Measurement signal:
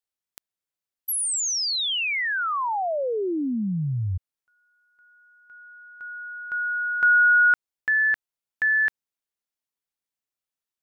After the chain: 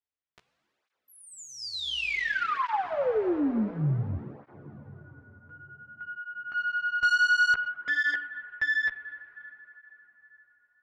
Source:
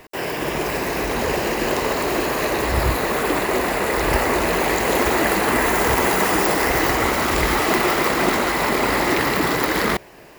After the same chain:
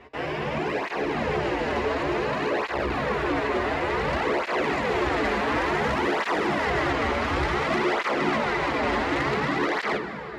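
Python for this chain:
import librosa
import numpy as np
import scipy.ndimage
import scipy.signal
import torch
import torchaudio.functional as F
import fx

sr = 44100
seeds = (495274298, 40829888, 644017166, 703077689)

y = scipy.signal.sosfilt(scipy.signal.butter(2, 2900.0, 'lowpass', fs=sr, output='sos'), x)
y = fx.doubler(y, sr, ms=14.0, db=-5.0)
y = fx.rev_plate(y, sr, seeds[0], rt60_s=4.3, hf_ratio=0.75, predelay_ms=0, drr_db=9.0)
y = fx.tube_stage(y, sr, drive_db=17.0, bias=0.3)
y = fx.flanger_cancel(y, sr, hz=0.56, depth_ms=6.5)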